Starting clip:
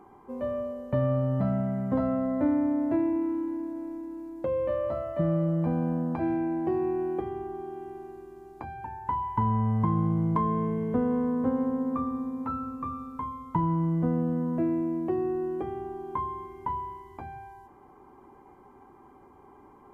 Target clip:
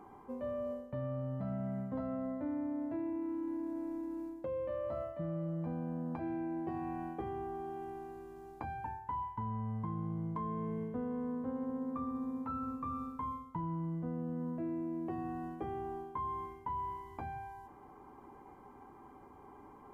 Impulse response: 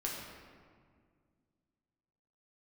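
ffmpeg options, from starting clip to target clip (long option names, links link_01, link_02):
-af "bandreject=frequency=370:width=12,areverse,acompressor=threshold=-35dB:ratio=6,areverse,volume=-1dB"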